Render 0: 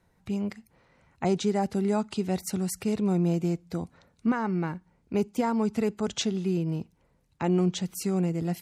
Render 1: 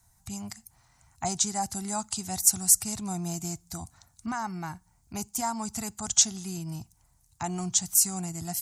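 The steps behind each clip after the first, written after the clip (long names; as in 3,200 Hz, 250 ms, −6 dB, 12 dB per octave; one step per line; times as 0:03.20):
drawn EQ curve 120 Hz 0 dB, 170 Hz −12 dB, 320 Hz −15 dB, 500 Hz −28 dB, 710 Hz −3 dB, 2,600 Hz −9 dB, 3,800 Hz −2 dB, 6,900 Hz +14 dB, 13,000 Hz +12 dB
level +4 dB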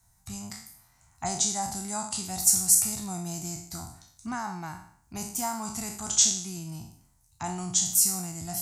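peak hold with a decay on every bin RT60 0.59 s
level −2.5 dB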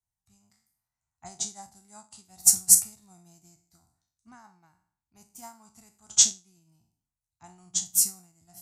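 expander for the loud parts 2.5 to 1, over −38 dBFS
level +5.5 dB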